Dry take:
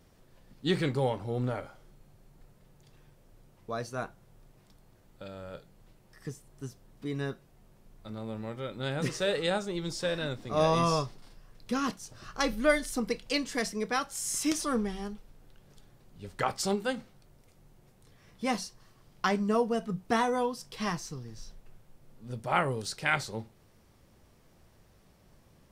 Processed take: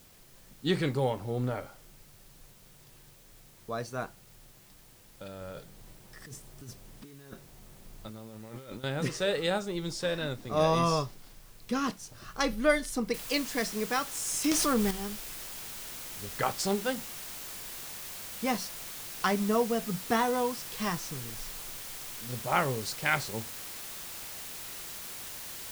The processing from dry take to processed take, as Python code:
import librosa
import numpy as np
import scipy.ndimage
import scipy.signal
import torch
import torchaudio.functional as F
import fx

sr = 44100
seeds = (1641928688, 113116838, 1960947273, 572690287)

y = fx.over_compress(x, sr, threshold_db=-45.0, ratio=-1.0, at=(5.41, 8.84))
y = fx.noise_floor_step(y, sr, seeds[0], at_s=13.14, before_db=-59, after_db=-42, tilt_db=0.0)
y = fx.env_flatten(y, sr, amount_pct=70, at=(14.44, 14.91))